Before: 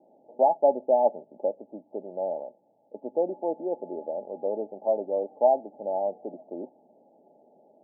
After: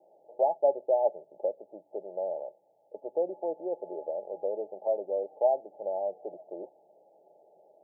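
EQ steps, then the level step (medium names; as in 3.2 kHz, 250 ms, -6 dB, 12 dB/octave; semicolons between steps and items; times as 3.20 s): high-pass 140 Hz; dynamic bell 990 Hz, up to -6 dB, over -34 dBFS, Q 0.83; static phaser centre 590 Hz, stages 4; 0.0 dB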